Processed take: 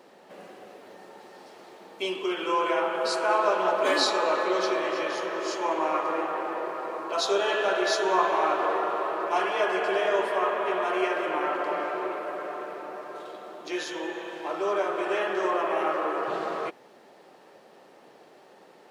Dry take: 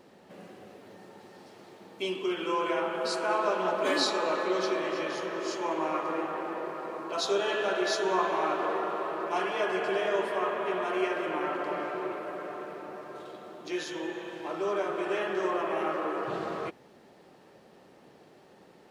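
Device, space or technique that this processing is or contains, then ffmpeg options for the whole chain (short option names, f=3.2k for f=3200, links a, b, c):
filter by subtraction: -filter_complex "[0:a]asplit=2[a][b];[b]lowpass=650,volume=-1[c];[a][c]amix=inputs=2:normalize=0,volume=3dB"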